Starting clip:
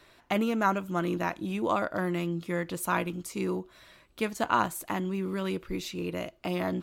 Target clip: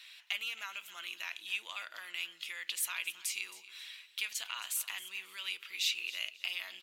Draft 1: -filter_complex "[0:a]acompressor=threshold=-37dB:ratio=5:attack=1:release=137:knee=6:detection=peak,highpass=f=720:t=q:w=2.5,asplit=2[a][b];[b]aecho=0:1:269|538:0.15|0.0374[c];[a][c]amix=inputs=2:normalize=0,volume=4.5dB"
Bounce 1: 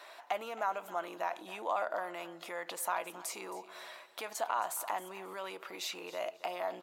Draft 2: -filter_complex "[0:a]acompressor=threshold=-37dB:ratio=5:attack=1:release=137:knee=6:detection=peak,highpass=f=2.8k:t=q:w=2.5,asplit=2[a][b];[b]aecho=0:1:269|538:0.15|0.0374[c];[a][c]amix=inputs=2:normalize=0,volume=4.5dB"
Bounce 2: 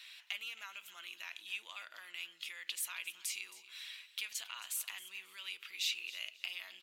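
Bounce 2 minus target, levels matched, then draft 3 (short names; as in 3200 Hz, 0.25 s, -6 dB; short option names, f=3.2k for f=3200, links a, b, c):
compressor: peak gain reduction +5.5 dB
-filter_complex "[0:a]acompressor=threshold=-30dB:ratio=5:attack=1:release=137:knee=6:detection=peak,highpass=f=2.8k:t=q:w=2.5,asplit=2[a][b];[b]aecho=0:1:269|538:0.15|0.0374[c];[a][c]amix=inputs=2:normalize=0,volume=4.5dB"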